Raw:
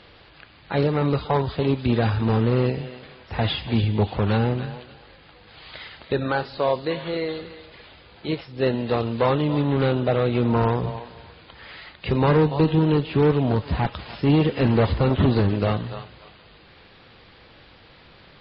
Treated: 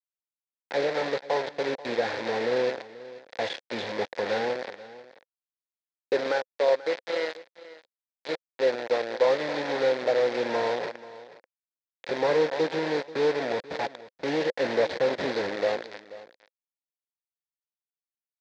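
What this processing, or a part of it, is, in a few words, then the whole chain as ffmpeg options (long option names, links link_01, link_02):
hand-held game console: -filter_complex "[0:a]asettb=1/sr,asplit=3[link_01][link_02][link_03];[link_01]atrim=end=4.674[link_04];[link_02]atrim=start=4.67:end=6.32,asetpts=PTS-STARTPTS,afade=type=in:duration=0.004:curve=qsin,afade=type=out:start_time=1.646:duration=0.004:curve=qsin,equalizer=frequency=350:width=0.39:gain=4[link_05];[link_03]atrim=start=6.316[link_06];[link_04][link_05]acrossfade=duration=0.004:curve1=hsin:curve2=qsin[link_07];[link_07][link_06]acrossfade=duration=0.004:curve1=qsin:curve2=hsin,acrusher=bits=3:mix=0:aa=0.000001,highpass=440,equalizer=frequency=520:width_type=q:width=4:gain=9,equalizer=frequency=1200:width_type=q:width=4:gain=-9,equalizer=frequency=1800:width_type=q:width=4:gain=4,equalizer=frequency=2900:width_type=q:width=4:gain=-8,lowpass=frequency=4500:width=0.5412,lowpass=frequency=4500:width=1.3066,aecho=1:1:485:0.133,volume=-5dB"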